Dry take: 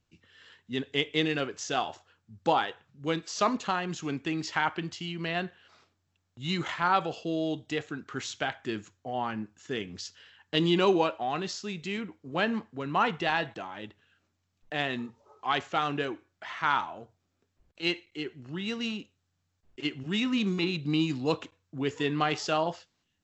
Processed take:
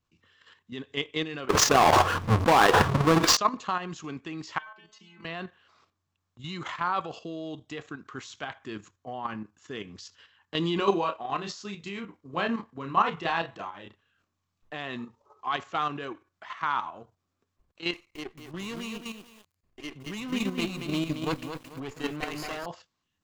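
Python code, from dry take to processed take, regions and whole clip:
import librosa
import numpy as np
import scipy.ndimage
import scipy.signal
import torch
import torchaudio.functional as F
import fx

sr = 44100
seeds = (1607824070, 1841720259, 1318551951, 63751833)

y = fx.chain(x, sr, fx.halfwave_hold(),
    fx.lowpass(hz=2800.0, slope=6),
    fx.env_flatten(amount_pct=100), at=(1.49, 3.37))
y = fx.chain(y, sr, fx.peak_eq(hz=77.0, db=-12.0, octaves=1.5),
    fx.stiff_resonator(f0_hz=210.0, decay_s=0.31, stiffness=0.002),
    fx.band_squash(depth_pct=100), at=(4.58, 5.25))
y = fx.chain(y, sr, fx.quant_float(bits=8),
    fx.doubler(ms=30.0, db=-5.0), at=(10.77, 14.74))
y = fx.chain(y, sr, fx.lower_of_two(delay_ms=0.42),
    fx.echo_crushed(ms=222, feedback_pct=35, bits=8, wet_db=-3.0), at=(17.93, 22.66))
y = fx.peak_eq(y, sr, hz=1100.0, db=9.5, octaves=0.31)
y = fx.level_steps(y, sr, step_db=9)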